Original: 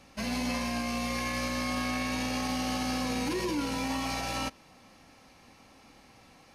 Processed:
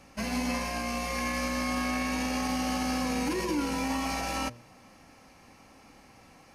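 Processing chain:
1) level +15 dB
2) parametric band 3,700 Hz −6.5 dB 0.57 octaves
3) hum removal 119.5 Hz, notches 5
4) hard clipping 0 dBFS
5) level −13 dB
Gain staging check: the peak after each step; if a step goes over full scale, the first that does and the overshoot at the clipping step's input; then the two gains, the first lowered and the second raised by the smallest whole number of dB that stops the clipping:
−4.5, −5.0, −5.5, −5.5, −18.5 dBFS
no step passes full scale

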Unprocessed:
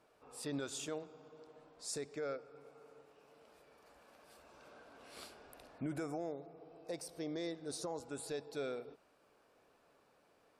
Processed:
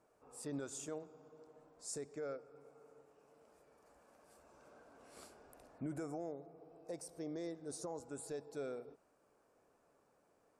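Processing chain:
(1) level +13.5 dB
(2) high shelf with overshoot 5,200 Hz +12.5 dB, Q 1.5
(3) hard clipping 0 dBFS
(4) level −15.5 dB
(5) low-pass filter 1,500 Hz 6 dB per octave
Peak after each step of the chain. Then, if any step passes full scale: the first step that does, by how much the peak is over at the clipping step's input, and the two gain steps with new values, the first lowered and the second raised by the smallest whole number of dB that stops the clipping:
−18.0, −4.0, −4.0, −19.5, −33.5 dBFS
no step passes full scale

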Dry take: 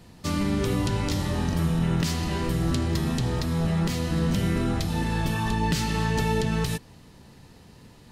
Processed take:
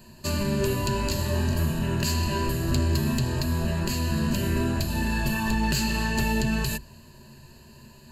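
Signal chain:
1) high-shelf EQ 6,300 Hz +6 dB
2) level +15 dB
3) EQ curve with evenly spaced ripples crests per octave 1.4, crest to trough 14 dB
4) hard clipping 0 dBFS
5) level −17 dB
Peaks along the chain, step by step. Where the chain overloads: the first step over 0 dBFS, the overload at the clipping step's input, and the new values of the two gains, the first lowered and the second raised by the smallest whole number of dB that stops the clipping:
−10.5, +4.5, +7.5, 0.0, −17.0 dBFS
step 2, 7.5 dB
step 2 +7 dB, step 5 −9 dB

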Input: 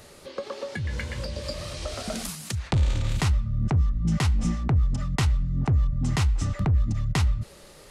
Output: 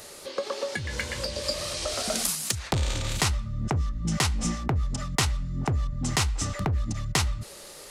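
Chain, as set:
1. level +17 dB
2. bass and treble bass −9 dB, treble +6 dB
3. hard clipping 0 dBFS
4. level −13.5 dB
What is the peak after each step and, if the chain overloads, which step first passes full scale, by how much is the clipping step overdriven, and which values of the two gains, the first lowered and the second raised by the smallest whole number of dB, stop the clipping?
+6.0, +9.5, 0.0, −13.5 dBFS
step 1, 9.5 dB
step 1 +7 dB, step 4 −3.5 dB

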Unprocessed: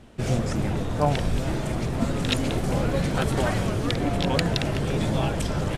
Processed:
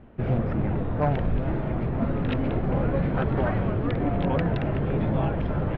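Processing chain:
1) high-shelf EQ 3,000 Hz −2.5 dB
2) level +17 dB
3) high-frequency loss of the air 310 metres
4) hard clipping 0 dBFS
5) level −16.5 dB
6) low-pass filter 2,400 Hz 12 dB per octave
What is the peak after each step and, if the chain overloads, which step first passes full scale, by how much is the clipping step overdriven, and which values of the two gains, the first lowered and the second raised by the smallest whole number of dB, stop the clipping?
−8.0, +9.0, +6.0, 0.0, −16.5, −16.0 dBFS
step 2, 6.0 dB
step 2 +11 dB, step 5 −10.5 dB

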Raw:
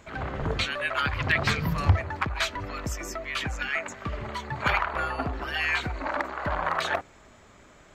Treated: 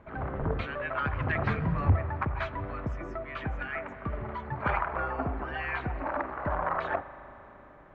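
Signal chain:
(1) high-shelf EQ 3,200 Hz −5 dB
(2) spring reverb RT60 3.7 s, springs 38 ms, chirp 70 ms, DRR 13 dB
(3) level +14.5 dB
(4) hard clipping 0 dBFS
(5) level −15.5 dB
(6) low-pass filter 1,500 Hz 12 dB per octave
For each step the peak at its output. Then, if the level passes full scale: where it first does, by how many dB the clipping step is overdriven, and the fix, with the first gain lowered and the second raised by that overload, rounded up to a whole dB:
−8.5, −8.0, +6.5, 0.0, −15.5, −15.0 dBFS
step 3, 6.5 dB
step 3 +7.5 dB, step 5 −8.5 dB

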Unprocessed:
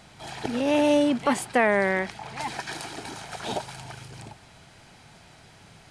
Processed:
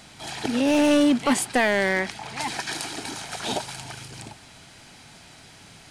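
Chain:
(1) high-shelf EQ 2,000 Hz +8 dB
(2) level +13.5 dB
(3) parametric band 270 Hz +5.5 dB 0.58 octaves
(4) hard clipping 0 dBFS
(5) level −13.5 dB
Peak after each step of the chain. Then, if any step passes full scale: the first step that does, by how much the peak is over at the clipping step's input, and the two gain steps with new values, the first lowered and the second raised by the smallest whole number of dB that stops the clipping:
−5.5, +8.0, +8.5, 0.0, −13.5 dBFS
step 2, 8.5 dB
step 2 +4.5 dB, step 5 −4.5 dB

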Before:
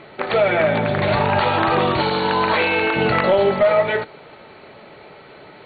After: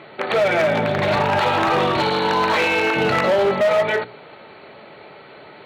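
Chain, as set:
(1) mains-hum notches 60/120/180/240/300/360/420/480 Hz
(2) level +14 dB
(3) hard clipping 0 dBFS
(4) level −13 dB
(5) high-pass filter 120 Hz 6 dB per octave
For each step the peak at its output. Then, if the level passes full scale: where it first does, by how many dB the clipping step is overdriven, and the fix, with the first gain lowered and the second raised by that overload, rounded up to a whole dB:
−5.0, +9.0, 0.0, −13.0, −9.5 dBFS
step 2, 9.0 dB
step 2 +5 dB, step 4 −4 dB

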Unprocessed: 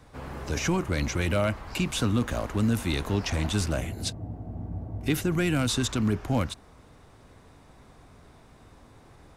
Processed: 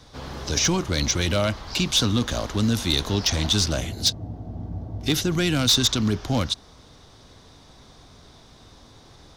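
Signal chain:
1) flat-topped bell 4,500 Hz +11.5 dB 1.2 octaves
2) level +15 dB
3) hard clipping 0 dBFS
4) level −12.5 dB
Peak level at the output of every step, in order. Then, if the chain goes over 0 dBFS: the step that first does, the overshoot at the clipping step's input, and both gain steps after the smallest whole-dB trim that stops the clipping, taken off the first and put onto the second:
−6.5, +8.5, 0.0, −12.5 dBFS
step 2, 8.5 dB
step 2 +6 dB, step 4 −3.5 dB

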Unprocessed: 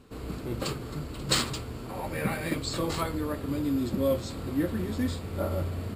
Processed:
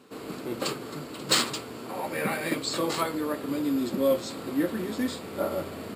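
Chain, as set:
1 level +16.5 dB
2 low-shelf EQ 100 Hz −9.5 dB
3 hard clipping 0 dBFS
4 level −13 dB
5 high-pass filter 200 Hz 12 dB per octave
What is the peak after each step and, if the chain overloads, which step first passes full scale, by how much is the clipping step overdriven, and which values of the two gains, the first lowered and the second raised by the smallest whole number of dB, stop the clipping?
+6.5, +7.0, 0.0, −13.0, −10.5 dBFS
step 1, 7.0 dB
step 1 +9.5 dB, step 4 −6 dB

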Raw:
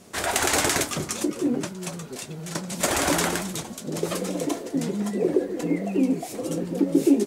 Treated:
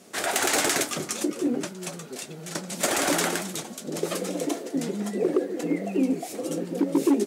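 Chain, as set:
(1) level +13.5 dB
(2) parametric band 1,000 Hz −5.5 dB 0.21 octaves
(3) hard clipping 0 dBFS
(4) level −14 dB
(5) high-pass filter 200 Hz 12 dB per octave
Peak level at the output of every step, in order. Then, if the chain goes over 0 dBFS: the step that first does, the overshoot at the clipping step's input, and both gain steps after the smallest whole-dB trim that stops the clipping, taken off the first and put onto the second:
+7.5, +7.5, 0.0, −14.0, −11.0 dBFS
step 1, 7.5 dB
step 1 +5.5 dB, step 4 −6 dB

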